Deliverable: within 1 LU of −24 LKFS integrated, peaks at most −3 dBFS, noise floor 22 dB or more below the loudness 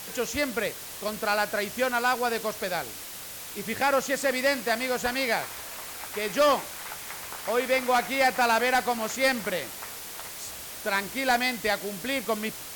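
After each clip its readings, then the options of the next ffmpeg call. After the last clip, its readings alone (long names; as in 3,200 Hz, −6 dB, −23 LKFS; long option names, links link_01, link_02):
background noise floor −40 dBFS; target noise floor −50 dBFS; integrated loudness −27.5 LKFS; sample peak −14.0 dBFS; target loudness −24.0 LKFS
→ -af "afftdn=noise_reduction=10:noise_floor=-40"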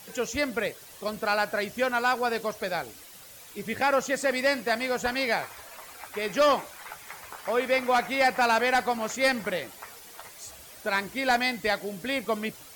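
background noise floor −48 dBFS; target noise floor −49 dBFS
→ -af "afftdn=noise_reduction=6:noise_floor=-48"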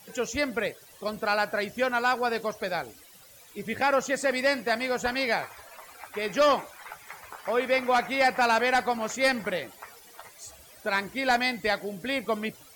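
background noise floor −52 dBFS; integrated loudness −27.0 LKFS; sample peak −14.5 dBFS; target loudness −24.0 LKFS
→ -af "volume=3dB"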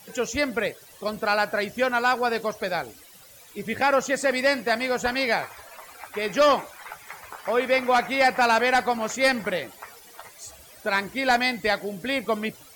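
integrated loudness −24.0 LKFS; sample peak −11.5 dBFS; background noise floor −49 dBFS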